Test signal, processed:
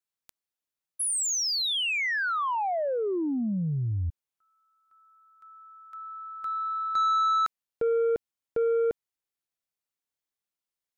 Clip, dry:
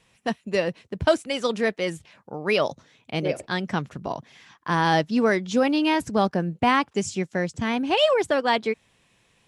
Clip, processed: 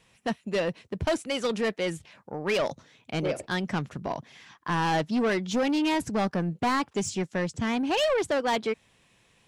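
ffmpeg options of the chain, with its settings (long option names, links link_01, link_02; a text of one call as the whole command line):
ffmpeg -i in.wav -af "asoftclip=type=tanh:threshold=-21dB" out.wav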